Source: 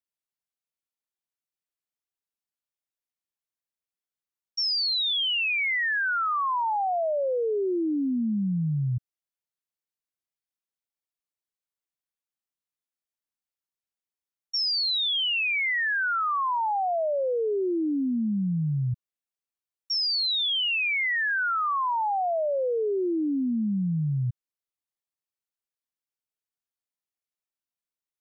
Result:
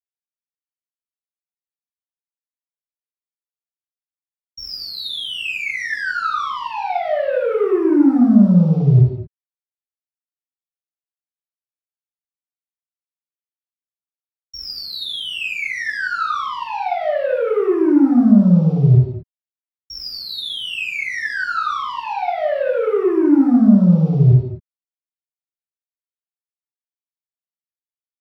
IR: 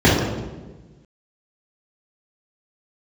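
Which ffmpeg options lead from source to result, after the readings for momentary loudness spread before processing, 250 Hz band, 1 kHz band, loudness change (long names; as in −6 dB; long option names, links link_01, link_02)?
5 LU, +14.0 dB, +3.5 dB, +8.5 dB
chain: -filter_complex "[0:a]aeval=exprs='(tanh(44.7*val(0)+0.2)-tanh(0.2))/44.7':channel_layout=same,aeval=exprs='val(0)*gte(abs(val(0)),0.00501)':channel_layout=same[link_01];[1:a]atrim=start_sample=2205,afade=type=out:start_time=0.27:duration=0.01,atrim=end_sample=12348,asetrate=34398,aresample=44100[link_02];[link_01][link_02]afir=irnorm=-1:irlink=0,volume=-14dB"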